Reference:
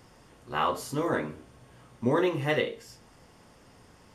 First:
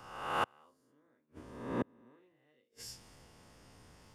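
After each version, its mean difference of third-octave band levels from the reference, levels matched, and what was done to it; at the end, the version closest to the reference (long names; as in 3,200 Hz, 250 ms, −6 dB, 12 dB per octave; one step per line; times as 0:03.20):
16.0 dB: peak hold with a rise ahead of every peak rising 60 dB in 1.29 s
dynamic equaliser 270 Hz, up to +7 dB, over −41 dBFS, Q 2.5
gate with flip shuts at −21 dBFS, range −39 dB
multiband upward and downward expander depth 40%
level −2.5 dB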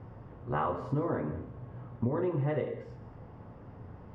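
9.0 dB: low-pass filter 1,100 Hz 12 dB per octave
parametric band 100 Hz +10.5 dB 0.91 octaves
downward compressor 16 to 1, threshold −32 dBFS, peak gain reduction 15 dB
reverb whose tail is shaped and stops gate 230 ms flat, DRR 10 dB
level +5 dB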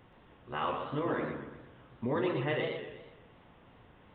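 7.0 dB: downsampling to 8,000 Hz
brickwall limiter −20 dBFS, peak gain reduction 6.5 dB
feedback echo with a swinging delay time 122 ms, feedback 47%, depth 141 cents, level −6 dB
level −3.5 dB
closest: third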